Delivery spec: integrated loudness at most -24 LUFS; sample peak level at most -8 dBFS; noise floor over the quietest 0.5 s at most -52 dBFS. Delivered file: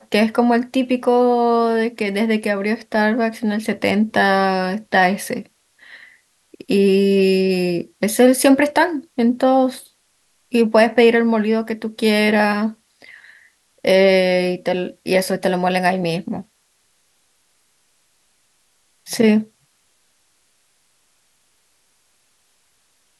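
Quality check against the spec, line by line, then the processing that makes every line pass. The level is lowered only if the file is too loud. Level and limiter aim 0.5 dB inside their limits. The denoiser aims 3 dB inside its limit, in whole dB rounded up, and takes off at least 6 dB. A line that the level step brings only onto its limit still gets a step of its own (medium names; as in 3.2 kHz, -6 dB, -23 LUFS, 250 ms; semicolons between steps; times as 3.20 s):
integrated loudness -17.5 LUFS: fail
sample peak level -3.0 dBFS: fail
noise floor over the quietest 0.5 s -63 dBFS: pass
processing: trim -7 dB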